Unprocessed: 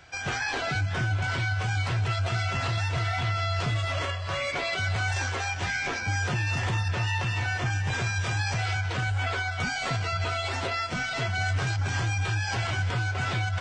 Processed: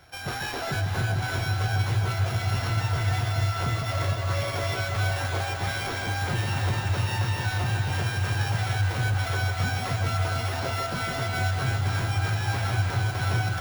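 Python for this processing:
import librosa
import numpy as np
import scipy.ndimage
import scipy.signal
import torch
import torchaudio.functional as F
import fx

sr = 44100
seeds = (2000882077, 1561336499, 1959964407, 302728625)

p1 = np.r_[np.sort(x[:len(x) // 8 * 8].reshape(-1, 8), axis=1).ravel(), x[len(x) // 8 * 8:]]
p2 = fx.high_shelf(p1, sr, hz=3300.0, db=-7.5)
y = p2 + fx.echo_alternate(p2, sr, ms=151, hz=1100.0, feedback_pct=89, wet_db=-5.0, dry=0)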